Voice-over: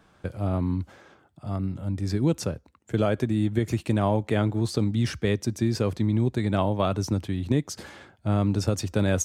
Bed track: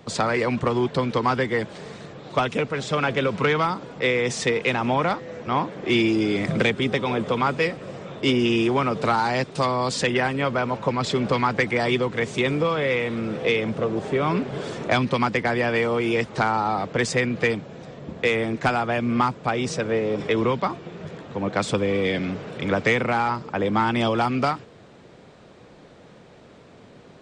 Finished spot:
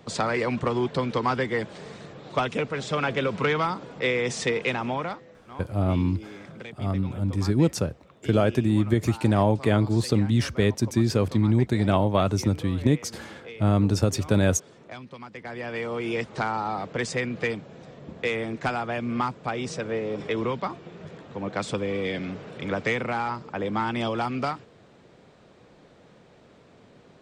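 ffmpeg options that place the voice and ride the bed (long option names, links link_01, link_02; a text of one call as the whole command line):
ffmpeg -i stem1.wav -i stem2.wav -filter_complex "[0:a]adelay=5350,volume=2.5dB[link_01];[1:a]volume=11.5dB,afade=type=out:start_time=4.62:duration=0.79:silence=0.141254,afade=type=in:start_time=15.3:duration=0.84:silence=0.188365[link_02];[link_01][link_02]amix=inputs=2:normalize=0" out.wav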